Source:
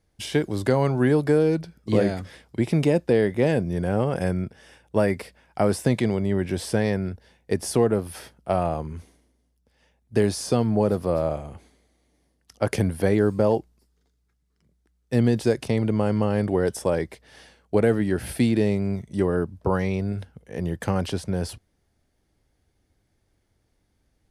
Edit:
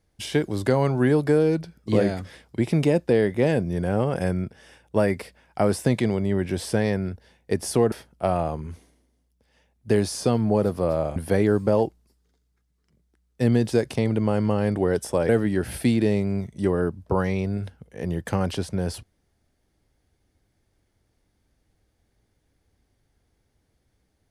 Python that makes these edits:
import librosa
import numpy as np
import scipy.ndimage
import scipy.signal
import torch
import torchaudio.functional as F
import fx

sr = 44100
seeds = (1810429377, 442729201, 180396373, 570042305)

y = fx.edit(x, sr, fx.cut(start_s=7.92, length_s=0.26),
    fx.cut(start_s=11.42, length_s=1.46),
    fx.cut(start_s=17.01, length_s=0.83), tone=tone)